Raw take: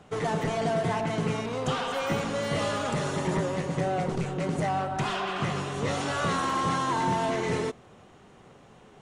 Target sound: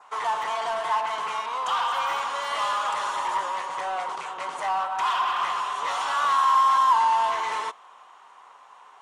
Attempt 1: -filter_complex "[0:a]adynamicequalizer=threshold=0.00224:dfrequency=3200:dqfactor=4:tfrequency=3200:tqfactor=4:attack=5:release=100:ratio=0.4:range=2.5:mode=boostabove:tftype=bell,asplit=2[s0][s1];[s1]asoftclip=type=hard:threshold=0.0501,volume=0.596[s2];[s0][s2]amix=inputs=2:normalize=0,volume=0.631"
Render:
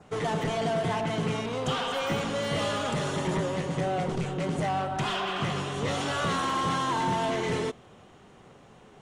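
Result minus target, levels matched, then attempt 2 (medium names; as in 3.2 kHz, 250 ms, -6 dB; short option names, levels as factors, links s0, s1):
1 kHz band -5.0 dB
-filter_complex "[0:a]adynamicequalizer=threshold=0.00224:dfrequency=3200:dqfactor=4:tfrequency=3200:tqfactor=4:attack=5:release=100:ratio=0.4:range=2.5:mode=boostabove:tftype=bell,highpass=f=1000:t=q:w=5.4,asplit=2[s0][s1];[s1]asoftclip=type=hard:threshold=0.0501,volume=0.596[s2];[s0][s2]amix=inputs=2:normalize=0,volume=0.631"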